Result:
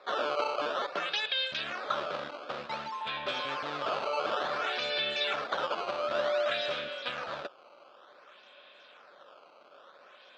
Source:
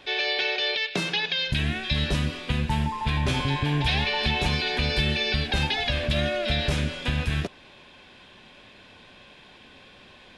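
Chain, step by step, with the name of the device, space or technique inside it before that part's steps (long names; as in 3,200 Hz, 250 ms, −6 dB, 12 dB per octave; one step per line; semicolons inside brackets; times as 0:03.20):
circuit-bent sampling toy (sample-and-hold swept by an LFO 14×, swing 160% 0.55 Hz; loudspeaker in its box 570–4,400 Hz, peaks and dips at 570 Hz +9 dB, 890 Hz −3 dB, 1,300 Hz +9 dB, 2,000 Hz −4 dB, 3,600 Hz +4 dB)
level −5 dB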